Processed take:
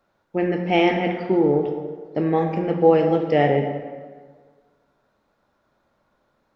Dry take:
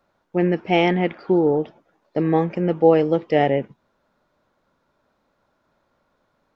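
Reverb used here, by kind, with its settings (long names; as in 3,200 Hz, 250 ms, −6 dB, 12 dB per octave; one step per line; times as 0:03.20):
dense smooth reverb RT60 1.6 s, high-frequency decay 0.65×, DRR 3.5 dB
level −1.5 dB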